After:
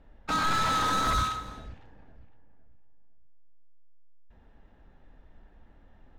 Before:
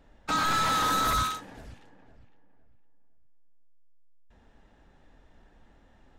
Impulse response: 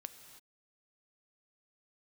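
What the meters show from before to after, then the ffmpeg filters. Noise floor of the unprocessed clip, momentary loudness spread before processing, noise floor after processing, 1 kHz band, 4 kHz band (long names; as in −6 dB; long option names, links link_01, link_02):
−60 dBFS, 7 LU, −58 dBFS, −0.5 dB, −1.5 dB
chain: -filter_complex "[0:a]adynamicsmooth=sensitivity=6.5:basefreq=4200,asplit=2[link_01][link_02];[link_02]lowshelf=frequency=110:gain=9[link_03];[1:a]atrim=start_sample=2205[link_04];[link_03][link_04]afir=irnorm=-1:irlink=0,volume=6dB[link_05];[link_01][link_05]amix=inputs=2:normalize=0,volume=-7.5dB"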